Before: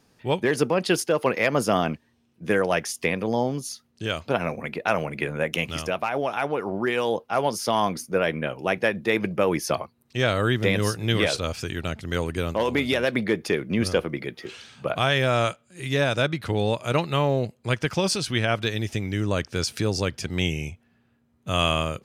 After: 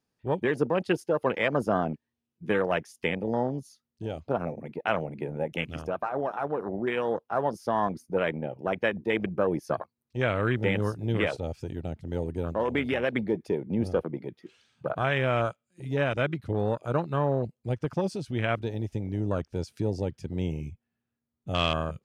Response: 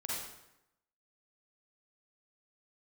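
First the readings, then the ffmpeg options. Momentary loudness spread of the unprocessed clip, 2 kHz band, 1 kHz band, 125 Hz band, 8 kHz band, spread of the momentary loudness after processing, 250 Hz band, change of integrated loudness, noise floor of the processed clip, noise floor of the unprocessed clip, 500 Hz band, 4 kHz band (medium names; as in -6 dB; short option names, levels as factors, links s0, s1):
8 LU, -6.0 dB, -4.0 dB, -3.5 dB, under -15 dB, 9 LU, -3.5 dB, -4.5 dB, -85 dBFS, -65 dBFS, -3.5 dB, -10.5 dB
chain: -af "afwtdn=0.0501,volume=0.668"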